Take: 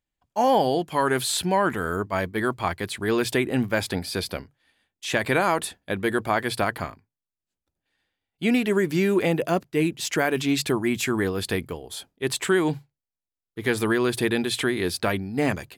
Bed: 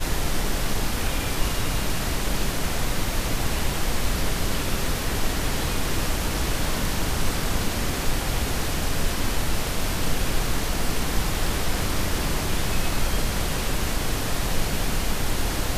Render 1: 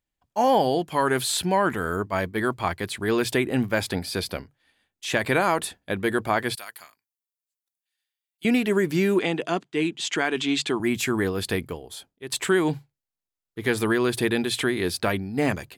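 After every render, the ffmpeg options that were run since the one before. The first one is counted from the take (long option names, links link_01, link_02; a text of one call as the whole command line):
ffmpeg -i in.wav -filter_complex "[0:a]asettb=1/sr,asplit=3[link_01][link_02][link_03];[link_01]atrim=end=6.554[link_04];[link_02]atrim=start=6.55:end=8.45,asetpts=PTS-STARTPTS,afade=type=in:duration=0.004:curve=qsin,afade=type=out:start_time=1.896:duration=0.004:curve=qsin,aderivative[link_05];[link_03]atrim=start=8.446[link_06];[link_04][link_05]acrossfade=duration=0.004:curve1=hsin:curve2=qsin[link_07];[link_07][link_06]acrossfade=duration=0.004:curve1=qsin:curve2=hsin,asettb=1/sr,asplit=3[link_08][link_09][link_10];[link_08]atrim=end=9.194[link_11];[link_09]atrim=start=9.19:end=10.8,asetpts=PTS-STARTPTS,afade=type=in:duration=0.004:curve=qsin,afade=type=out:start_time=1.606:duration=0.004:curve=qsin,highpass=220,equalizer=frequency=550:width_type=q:width=4:gain=-9,equalizer=frequency=3300:width_type=q:width=4:gain=6,equalizer=frequency=5300:width_type=q:width=4:gain=-4,lowpass=frequency=8200:width=0.5412,lowpass=frequency=8200:width=1.3066[link_12];[link_10]atrim=start=10.796[link_13];[link_11][link_12]acrossfade=duration=0.004:curve1=hsin:curve2=qsin[link_14];[link_14][link_13]acrossfade=duration=0.004:curve1=qsin:curve2=hsin,asplit=2[link_15][link_16];[link_15]atrim=end=12.32,asetpts=PTS-STARTPTS,afade=type=out:start_time=11.71:duration=0.61:silence=0.199526[link_17];[link_16]atrim=start=12.32,asetpts=PTS-STARTPTS,afade=type=in:duration=0.004:curve=hsin:silence=0.199526[link_18];[link_17][link_18]concat=n=2:v=0:a=1" out.wav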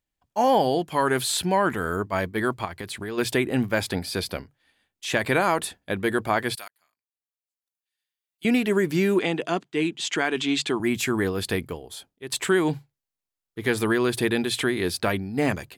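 ffmpeg -i in.wav -filter_complex "[0:a]asplit=3[link_01][link_02][link_03];[link_01]afade=type=out:start_time=2.64:duration=0.02[link_04];[link_02]acompressor=threshold=-29dB:ratio=6:attack=3.2:release=140:knee=1:detection=peak,afade=type=in:start_time=2.64:duration=0.02,afade=type=out:start_time=3.17:duration=0.02[link_05];[link_03]afade=type=in:start_time=3.17:duration=0.02[link_06];[link_04][link_05][link_06]amix=inputs=3:normalize=0,asplit=2[link_07][link_08];[link_07]atrim=end=6.68,asetpts=PTS-STARTPTS,afade=type=out:start_time=6.676:duration=0.004:curve=hsin[link_09];[link_08]atrim=start=6.68,asetpts=PTS-STARTPTS,afade=type=in:duration=1.85[link_10];[link_09][link_10]concat=n=2:v=0:a=1" out.wav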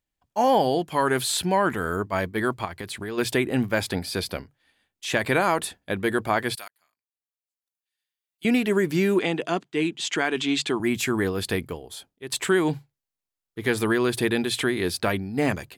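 ffmpeg -i in.wav -af anull out.wav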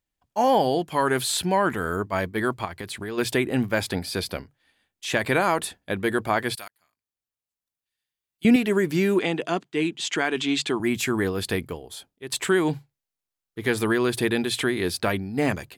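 ffmpeg -i in.wav -filter_complex "[0:a]asettb=1/sr,asplit=3[link_01][link_02][link_03];[link_01]atrim=end=6.574[link_04];[link_02]atrim=start=6.57:end=8.56,asetpts=PTS-STARTPTS,afade=type=in:duration=0.004:curve=qsin,afade=type=out:start_time=1.986:duration=0.004:curve=qsin,lowshelf=frequency=220:gain=11.5[link_05];[link_03]atrim=start=8.556[link_06];[link_04][link_05]acrossfade=duration=0.004:curve1=hsin:curve2=qsin[link_07];[link_07][link_06]acrossfade=duration=0.004:curve1=qsin:curve2=hsin" out.wav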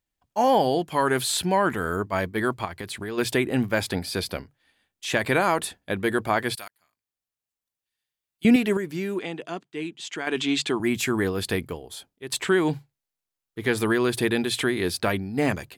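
ffmpeg -i in.wav -filter_complex "[0:a]asettb=1/sr,asplit=3[link_01][link_02][link_03];[link_01]atrim=end=12.414[link_04];[link_02]atrim=start=12.41:end=13.75,asetpts=PTS-STARTPTS,afade=type=in:duration=0.004:curve=qsin,afade=type=out:start_time=1.336:duration=0.004:curve=qsin,acrossover=split=6300[link_05][link_06];[link_06]acompressor=threshold=-46dB:ratio=4:attack=1:release=60[link_07];[link_05][link_07]amix=inputs=2:normalize=0[link_08];[link_03]atrim=start=13.746[link_09];[link_04][link_08]acrossfade=duration=0.004:curve1=hsin:curve2=qsin[link_10];[link_10][link_09]acrossfade=duration=0.004:curve1=qsin:curve2=hsin,asplit=3[link_11][link_12][link_13];[link_11]atrim=end=8.772[link_14];[link_12]atrim=start=8.768:end=10.272,asetpts=PTS-STARTPTS,volume=-7.5dB[link_15];[link_13]atrim=start=10.268[link_16];[link_14][link_15]acrossfade=duration=0.004:curve1=hsin:curve2=hsin[link_17];[link_17][link_16]acrossfade=duration=0.004:curve1=hsin:curve2=hsin" out.wav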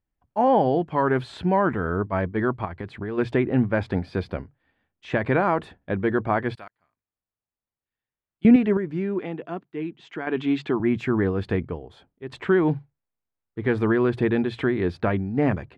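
ffmpeg -i in.wav -af "lowpass=1700,lowshelf=frequency=240:gain=6" out.wav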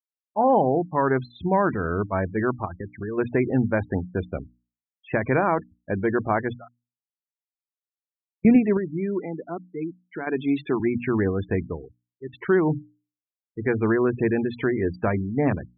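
ffmpeg -i in.wav -af "afftfilt=real='re*gte(hypot(re,im),0.0316)':imag='im*gte(hypot(re,im),0.0316)':win_size=1024:overlap=0.75,bandreject=frequency=60:width_type=h:width=6,bandreject=frequency=120:width_type=h:width=6,bandreject=frequency=180:width_type=h:width=6,bandreject=frequency=240:width_type=h:width=6,bandreject=frequency=300:width_type=h:width=6" out.wav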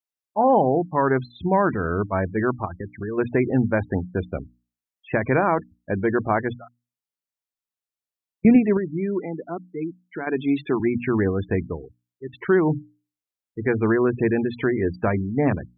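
ffmpeg -i in.wav -af "volume=1.5dB" out.wav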